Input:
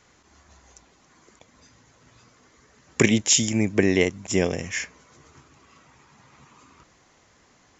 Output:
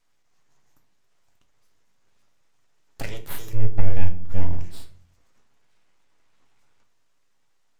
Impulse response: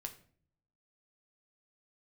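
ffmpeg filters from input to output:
-filter_complex "[0:a]aeval=exprs='abs(val(0))':c=same,asettb=1/sr,asplit=3[a][b][c];[a]atrim=end=3.534[d];[b]atrim=start=3.53:end=4.61,asetpts=PTS-STARTPTS,afade=t=in:d=0.004:c=qsin,afade=t=out:st=1.076:d=0.004:c=qsin,aemphasis=mode=reproduction:type=riaa[e];[c]atrim=start=4.606[f];[d][e]acrossfade=d=0.004:c1=hsin:c2=qsin[g];[g][f]acrossfade=d=0.004:c1=qsin:c2=hsin[h];[1:a]atrim=start_sample=2205[i];[h][i]afir=irnorm=-1:irlink=0,volume=-10.5dB"

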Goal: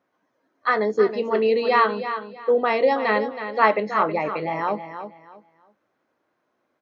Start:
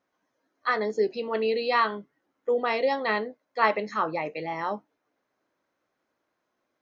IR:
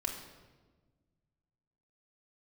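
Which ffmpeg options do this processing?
-filter_complex "[0:a]highpass=77,highshelf=f=3.8k:g=-11,asplit=2[a][b];[b]aecho=0:1:322|644|966:0.316|0.0791|0.0198[c];[a][c]amix=inputs=2:normalize=0,volume=6dB"

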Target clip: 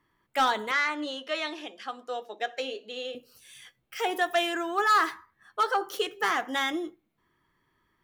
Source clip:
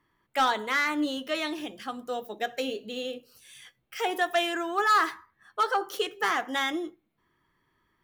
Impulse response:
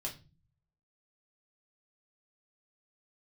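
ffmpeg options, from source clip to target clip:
-filter_complex "[0:a]asettb=1/sr,asplit=3[a][b][c];[a]atrim=end=0.714[d];[b]atrim=start=0.71:end=3.15,asetpts=PTS-STARTPTS,afade=t=in:d=0.004:c=qsin,afade=t=out:st=2.436:d=0.004:c=qsin,highpass=430,lowpass=6.4k[e];[c]atrim=start=3.146[f];[d][e]acrossfade=d=0.004:c1=hsin:c2=qsin[g];[g][f]acrossfade=d=0.004:c1=qsin:c2=hsin"

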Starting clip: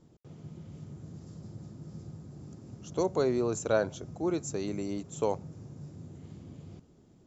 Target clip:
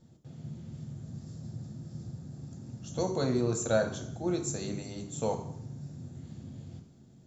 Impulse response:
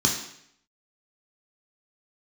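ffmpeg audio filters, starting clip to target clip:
-filter_complex "[0:a]bandreject=f=50:t=h:w=6,bandreject=f=100:t=h:w=6,bandreject=f=150:t=h:w=6,bandreject=f=200:t=h:w=6,asplit=2[a][b];[1:a]atrim=start_sample=2205,lowshelf=f=340:g=-4.5[c];[b][c]afir=irnorm=-1:irlink=0,volume=-15.5dB[d];[a][d]amix=inputs=2:normalize=0"

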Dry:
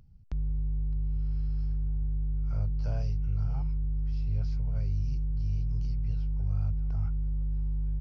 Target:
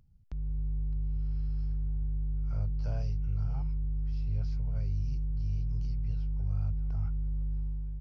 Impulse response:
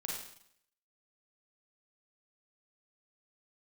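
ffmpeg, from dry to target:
-af "dynaudnorm=f=120:g=7:m=5dB,volume=-7dB"

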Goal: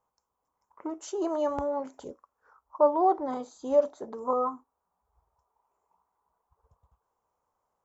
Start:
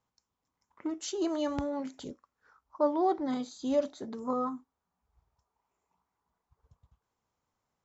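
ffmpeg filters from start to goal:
-af "equalizer=f=125:t=o:w=1:g=-6,equalizer=f=250:t=o:w=1:g=-5,equalizer=f=500:t=o:w=1:g=6,equalizer=f=1k:t=o:w=1:g=8,equalizer=f=2k:t=o:w=1:g=-5,equalizer=f=4k:t=o:w=1:g=-10"

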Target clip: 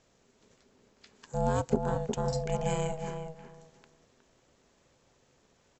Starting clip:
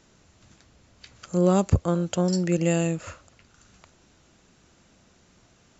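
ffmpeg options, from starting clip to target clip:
-filter_complex "[0:a]asplit=2[a][b];[b]adelay=363,lowpass=f=1.6k:p=1,volume=-6dB,asplit=2[c][d];[d]adelay=363,lowpass=f=1.6k:p=1,volume=0.2,asplit=2[e][f];[f]adelay=363,lowpass=f=1.6k:p=1,volume=0.2[g];[a][c][e][g]amix=inputs=4:normalize=0,aeval=exprs='val(0)*sin(2*PI*320*n/s)':c=same,volume=-5.5dB"

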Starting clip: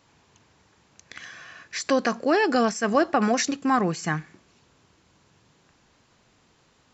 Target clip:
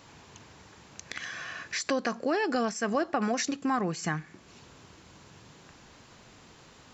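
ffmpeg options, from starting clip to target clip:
-af "acompressor=threshold=-46dB:ratio=2,volume=8dB"

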